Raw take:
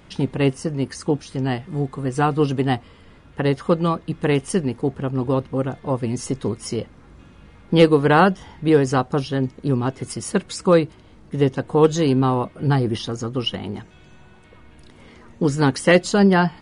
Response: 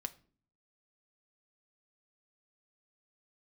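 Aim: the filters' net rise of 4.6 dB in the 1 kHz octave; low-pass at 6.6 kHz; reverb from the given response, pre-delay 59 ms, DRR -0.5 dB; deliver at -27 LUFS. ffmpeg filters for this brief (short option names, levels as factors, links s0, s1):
-filter_complex "[0:a]lowpass=6600,equalizer=f=1000:t=o:g=6,asplit=2[s0][s1];[1:a]atrim=start_sample=2205,adelay=59[s2];[s1][s2]afir=irnorm=-1:irlink=0,volume=1.33[s3];[s0][s3]amix=inputs=2:normalize=0,volume=0.282"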